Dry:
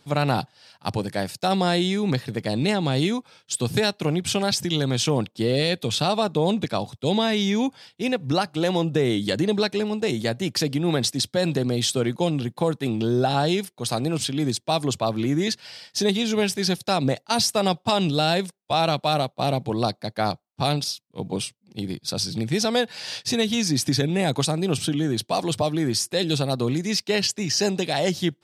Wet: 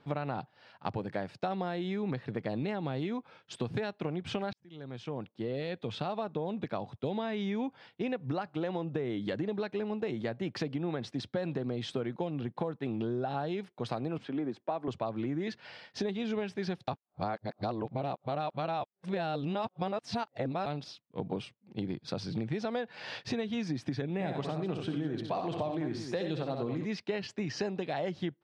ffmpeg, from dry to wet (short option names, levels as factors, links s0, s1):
-filter_complex "[0:a]asettb=1/sr,asplit=3[s0][s1][s2];[s0]atrim=end=14.184[s3];[s1]atrim=start=14.18:end=14.88,asetpts=PTS-STARTPTS,afade=t=in:d=0.004:c=qsin,afade=t=out:st=0.696:d=0.004:c=qsin,acrossover=split=200 2100:gain=0.158 1 0.224[s4][s5][s6];[s4][s5][s6]amix=inputs=3:normalize=0[s7];[s2]atrim=start=14.876[s8];[s3][s7]acrossfade=d=0.004:c1=hsin:c2=qsin[s9];[s9][s8]acrossfade=d=0.004:c1=qsin:c2=hsin,asplit=3[s10][s11][s12];[s10]afade=t=out:st=24.19:d=0.02[s13];[s11]aecho=1:1:63|90|207:0.473|0.335|0.211,afade=t=in:st=24.19:d=0.02,afade=t=out:st=26.84:d=0.02[s14];[s12]afade=t=in:st=26.84:d=0.02[s15];[s13][s14][s15]amix=inputs=3:normalize=0,asplit=4[s16][s17][s18][s19];[s16]atrim=end=4.53,asetpts=PTS-STARTPTS,afade=t=out:st=4.526:d=0.004:c=hsin[s20];[s17]atrim=start=4.53:end=16.882,asetpts=PTS-STARTPTS,afade=t=in:d=2.61[s21];[s18]atrim=start=16.878:end=20.662,asetpts=PTS-STARTPTS,areverse[s22];[s19]atrim=start=20.658[s23];[s20][s21]concat=n=2:v=0:a=1[s24];[s24][s22]acrossfade=d=0.004:c1=hsin:c2=hsin[s25];[s25][s23]acrossfade=d=0.004:c1=hsin:c2=hsin,lowpass=2000,lowshelf=f=210:g=-4.5,acompressor=threshold=0.0282:ratio=6"